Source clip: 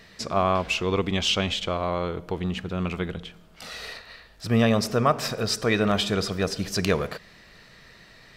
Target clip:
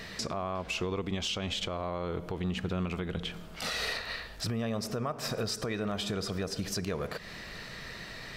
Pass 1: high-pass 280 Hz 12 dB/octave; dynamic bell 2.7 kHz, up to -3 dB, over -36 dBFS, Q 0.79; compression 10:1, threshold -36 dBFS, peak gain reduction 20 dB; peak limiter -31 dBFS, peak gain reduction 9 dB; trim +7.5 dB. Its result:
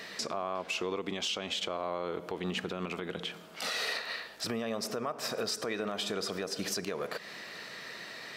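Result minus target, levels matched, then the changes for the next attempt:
250 Hz band -3.0 dB
remove: high-pass 280 Hz 12 dB/octave

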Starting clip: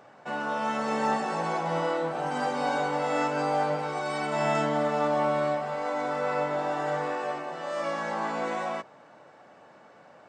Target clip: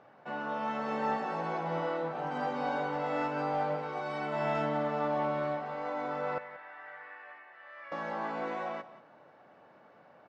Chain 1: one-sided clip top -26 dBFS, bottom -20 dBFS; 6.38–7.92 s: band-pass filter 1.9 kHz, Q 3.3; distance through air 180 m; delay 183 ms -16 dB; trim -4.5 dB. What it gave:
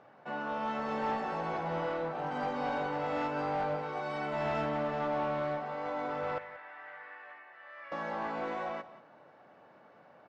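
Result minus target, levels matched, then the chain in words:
one-sided clip: distortion +13 dB
one-sided clip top -14.5 dBFS, bottom -20 dBFS; 6.38–7.92 s: band-pass filter 1.9 kHz, Q 3.3; distance through air 180 m; delay 183 ms -16 dB; trim -4.5 dB

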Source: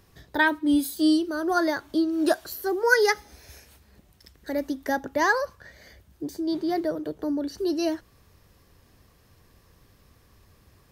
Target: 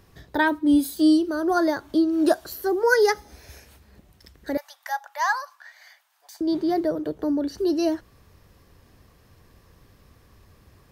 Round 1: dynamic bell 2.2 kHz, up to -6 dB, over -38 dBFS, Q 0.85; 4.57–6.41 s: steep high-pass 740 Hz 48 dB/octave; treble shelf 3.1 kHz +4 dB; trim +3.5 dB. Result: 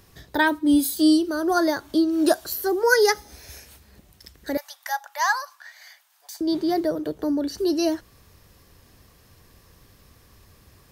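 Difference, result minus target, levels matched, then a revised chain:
8 kHz band +6.0 dB
dynamic bell 2.2 kHz, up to -6 dB, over -38 dBFS, Q 0.85; 4.57–6.41 s: steep high-pass 740 Hz 48 dB/octave; treble shelf 3.1 kHz -4 dB; trim +3.5 dB

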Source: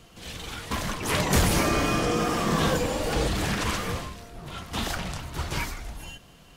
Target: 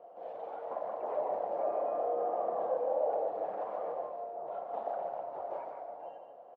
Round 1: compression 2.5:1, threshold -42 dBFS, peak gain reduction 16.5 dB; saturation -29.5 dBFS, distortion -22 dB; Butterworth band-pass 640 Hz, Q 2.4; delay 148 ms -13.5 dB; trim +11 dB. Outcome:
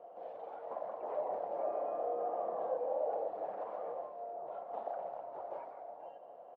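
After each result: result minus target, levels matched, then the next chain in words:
compression: peak gain reduction +4.5 dB; echo-to-direct -6.5 dB
compression 2.5:1, threshold -34.5 dBFS, peak gain reduction 12 dB; saturation -29.5 dBFS, distortion -15 dB; Butterworth band-pass 640 Hz, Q 2.4; delay 148 ms -13.5 dB; trim +11 dB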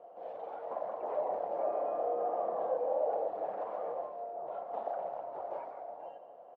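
echo-to-direct -6.5 dB
compression 2.5:1, threshold -34.5 dBFS, peak gain reduction 12 dB; saturation -29.5 dBFS, distortion -15 dB; Butterworth band-pass 640 Hz, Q 2.4; delay 148 ms -7 dB; trim +11 dB

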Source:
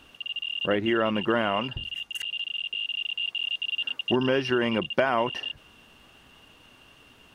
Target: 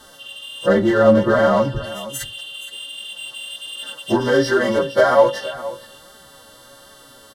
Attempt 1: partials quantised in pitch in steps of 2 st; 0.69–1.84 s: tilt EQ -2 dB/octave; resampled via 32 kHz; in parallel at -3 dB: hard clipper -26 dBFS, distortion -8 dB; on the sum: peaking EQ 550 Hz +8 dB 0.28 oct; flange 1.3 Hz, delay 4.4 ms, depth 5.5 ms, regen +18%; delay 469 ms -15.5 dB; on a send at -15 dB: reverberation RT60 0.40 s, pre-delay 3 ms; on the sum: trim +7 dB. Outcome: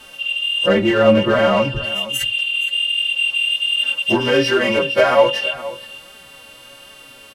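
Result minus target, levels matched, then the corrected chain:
2 kHz band +5.0 dB
partials quantised in pitch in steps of 2 st; 0.69–1.84 s: tilt EQ -2 dB/octave; resampled via 32 kHz; in parallel at -3 dB: hard clipper -26 dBFS, distortion -8 dB; on the sum: Butterworth band-stop 2.5 kHz, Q 1.8; peaking EQ 550 Hz +8 dB 0.28 oct; flange 1.3 Hz, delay 4.4 ms, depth 5.5 ms, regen +18%; delay 469 ms -15.5 dB; on a send at -15 dB: reverberation RT60 0.40 s, pre-delay 3 ms; on the sum: trim +7 dB

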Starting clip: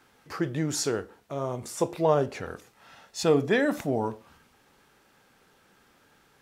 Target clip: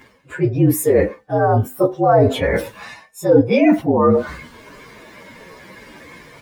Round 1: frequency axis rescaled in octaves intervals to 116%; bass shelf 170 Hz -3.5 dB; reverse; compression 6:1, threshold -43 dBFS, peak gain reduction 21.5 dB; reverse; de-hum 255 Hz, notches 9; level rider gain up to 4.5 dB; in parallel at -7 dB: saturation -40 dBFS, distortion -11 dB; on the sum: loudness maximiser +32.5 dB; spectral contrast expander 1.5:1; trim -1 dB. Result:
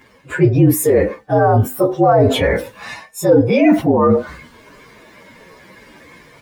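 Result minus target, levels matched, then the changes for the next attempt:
compression: peak gain reduction -6.5 dB
change: compression 6:1, threshold -51 dBFS, peak gain reduction 28 dB

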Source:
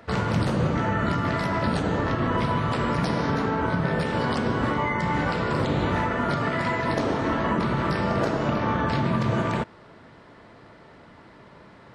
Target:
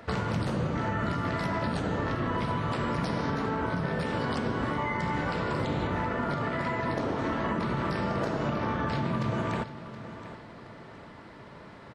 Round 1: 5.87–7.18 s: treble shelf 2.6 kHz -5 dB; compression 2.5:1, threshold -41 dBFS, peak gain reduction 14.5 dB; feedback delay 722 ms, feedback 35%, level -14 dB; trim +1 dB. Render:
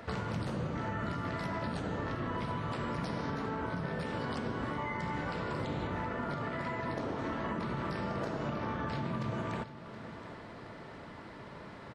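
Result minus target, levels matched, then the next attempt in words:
compression: peak gain reduction +6.5 dB
5.87–7.18 s: treble shelf 2.6 kHz -5 dB; compression 2.5:1, threshold -30.5 dBFS, peak gain reduction 8 dB; feedback delay 722 ms, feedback 35%, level -14 dB; trim +1 dB

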